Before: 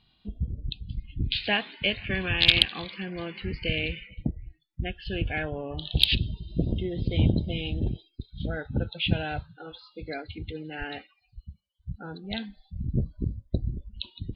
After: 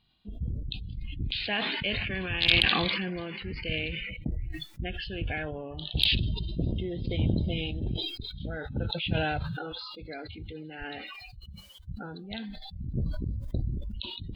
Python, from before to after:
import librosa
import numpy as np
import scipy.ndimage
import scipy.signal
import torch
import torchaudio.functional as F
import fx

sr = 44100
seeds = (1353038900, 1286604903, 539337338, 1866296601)

y = fx.sustainer(x, sr, db_per_s=22.0)
y = F.gain(torch.from_numpy(y), -5.5).numpy()